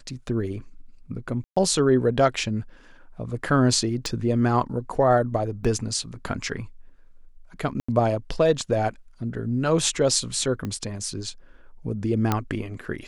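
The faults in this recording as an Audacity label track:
1.440000	1.560000	dropout 125 ms
4.060000	4.060000	pop
5.640000	5.650000	dropout 5.9 ms
7.800000	7.880000	dropout 85 ms
10.650000	10.650000	pop -18 dBFS
12.320000	12.320000	pop -8 dBFS

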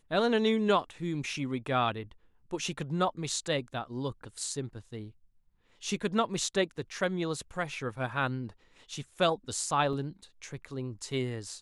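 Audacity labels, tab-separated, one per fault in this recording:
9.930000	9.930000	dropout 3.1 ms

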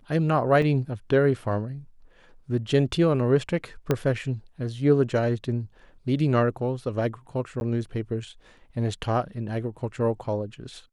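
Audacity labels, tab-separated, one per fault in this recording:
0.620000	0.620000	dropout 3.3 ms
3.910000	3.910000	pop -10 dBFS
7.600000	7.610000	dropout 11 ms

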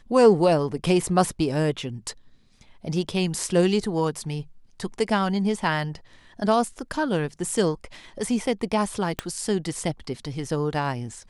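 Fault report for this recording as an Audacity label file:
9.190000	9.190000	pop -11 dBFS

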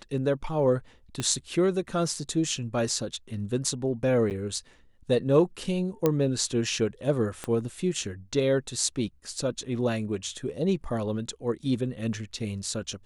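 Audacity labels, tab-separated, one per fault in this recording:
1.200000	1.200000	pop -16 dBFS
4.300000	4.310000	dropout 9.1 ms
6.060000	6.060000	pop -10 dBFS
7.440000	7.440000	pop -18 dBFS
9.380000	9.380000	dropout 2.4 ms

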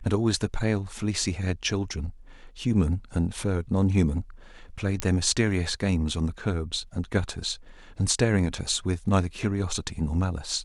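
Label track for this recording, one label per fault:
5.000000	5.000000	pop -11 dBFS

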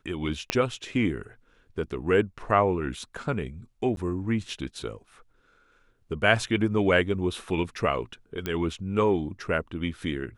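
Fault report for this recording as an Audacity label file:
0.500000	0.500000	pop -9 dBFS
3.960000	3.970000	dropout 12 ms
8.460000	8.460000	pop -15 dBFS

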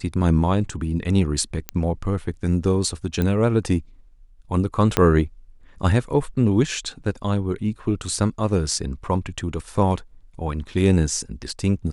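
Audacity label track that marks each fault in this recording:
1.690000	1.690000	pop -9 dBFS
3.220000	3.220000	pop -11 dBFS
4.970000	4.970000	pop -3 dBFS

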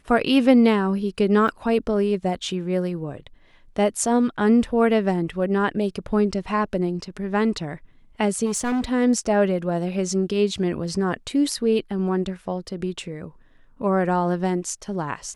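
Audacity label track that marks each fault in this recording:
1.480000	1.480000	dropout 4.7 ms
8.450000	8.920000	clipped -20 dBFS

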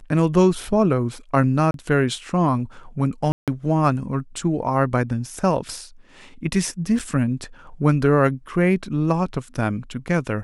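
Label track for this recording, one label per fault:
1.710000	1.740000	dropout 32 ms
3.320000	3.480000	dropout 157 ms
6.990000	7.000000	dropout 5.8 ms

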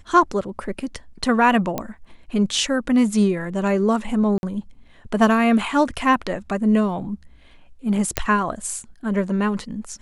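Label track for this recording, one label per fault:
1.780000	1.780000	pop -10 dBFS
4.380000	4.430000	dropout 51 ms
8.170000	8.170000	pop -4 dBFS

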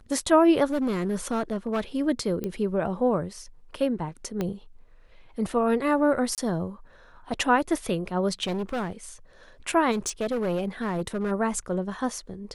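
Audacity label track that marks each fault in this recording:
0.720000	1.810000	clipped -22 dBFS
2.440000	2.440000	pop -18 dBFS
4.410000	4.410000	pop -15 dBFS
6.350000	6.380000	dropout 28 ms
8.430000	8.930000	clipped -25.5 dBFS
9.910000	11.320000	clipped -23 dBFS

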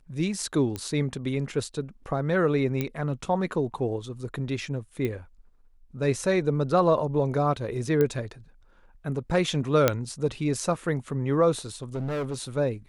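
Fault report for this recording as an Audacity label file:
0.760000	0.760000	pop -18 dBFS
2.810000	2.810000	pop -14 dBFS
5.050000	5.050000	pop -18 dBFS
8.010000	8.010000	pop -13 dBFS
9.880000	9.880000	pop -5 dBFS
11.760000	12.350000	clipped -26.5 dBFS

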